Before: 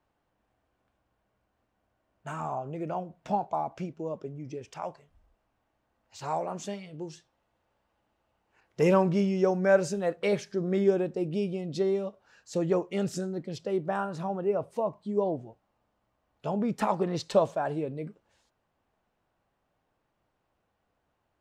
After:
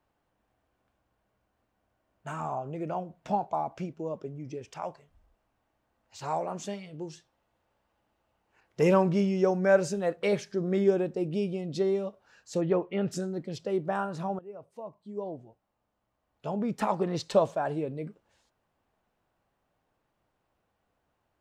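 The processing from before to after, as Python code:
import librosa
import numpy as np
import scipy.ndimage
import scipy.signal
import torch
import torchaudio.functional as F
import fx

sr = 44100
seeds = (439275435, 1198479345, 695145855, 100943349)

y = fx.lowpass(x, sr, hz=fx.line((12.6, 4400.0), (13.11, 2800.0)), slope=24, at=(12.6, 13.11), fade=0.02)
y = fx.edit(y, sr, fx.fade_in_from(start_s=14.39, length_s=2.8, floor_db=-19.0), tone=tone)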